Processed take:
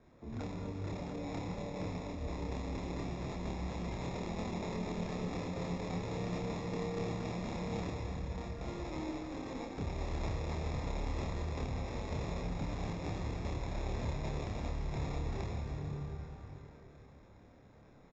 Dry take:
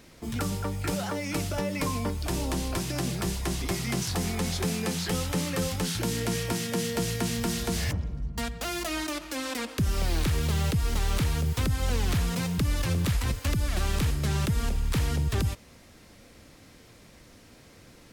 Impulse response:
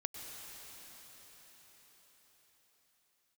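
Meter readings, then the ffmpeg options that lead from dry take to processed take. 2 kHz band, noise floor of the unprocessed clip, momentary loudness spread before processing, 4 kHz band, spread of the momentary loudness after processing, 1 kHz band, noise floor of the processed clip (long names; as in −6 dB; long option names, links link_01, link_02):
−13.0 dB, −53 dBFS, 5 LU, −17.0 dB, 4 LU, −7.5 dB, −58 dBFS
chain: -filter_complex "[0:a]asplit=2[link_01][link_02];[link_02]acrusher=bits=3:mix=0:aa=0.000001,volume=-11dB[link_03];[link_01][link_03]amix=inputs=2:normalize=0[link_04];[1:a]atrim=start_sample=2205,asetrate=66150,aresample=44100[link_05];[link_04][link_05]afir=irnorm=-1:irlink=0,acrossover=split=550|1700[link_06][link_07][link_08];[link_06]alimiter=level_in=5dB:limit=-24dB:level=0:latency=1:release=241,volume=-5dB[link_09];[link_07]acompressor=threshold=-54dB:ratio=6[link_10];[link_08]acrusher=samples=29:mix=1:aa=0.000001[link_11];[link_09][link_10][link_11]amix=inputs=3:normalize=0,aresample=16000,aresample=44100,asplit=2[link_12][link_13];[link_13]adelay=28,volume=-2.5dB[link_14];[link_12][link_14]amix=inputs=2:normalize=0,volume=-5dB"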